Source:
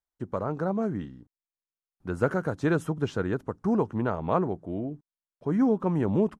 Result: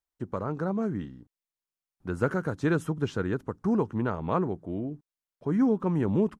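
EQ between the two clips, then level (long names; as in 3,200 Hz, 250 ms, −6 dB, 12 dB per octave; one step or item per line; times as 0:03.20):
dynamic equaliser 670 Hz, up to −5 dB, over −42 dBFS, Q 1.8
0.0 dB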